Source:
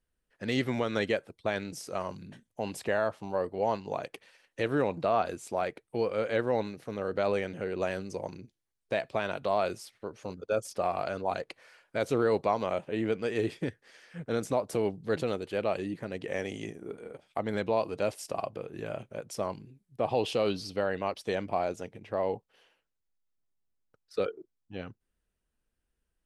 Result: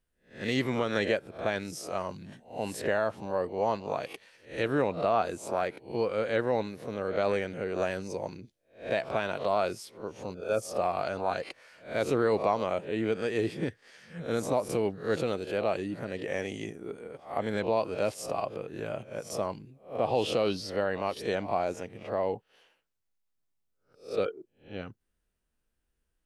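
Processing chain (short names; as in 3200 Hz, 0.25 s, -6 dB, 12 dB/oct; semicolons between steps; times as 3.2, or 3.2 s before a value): spectral swells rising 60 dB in 0.34 s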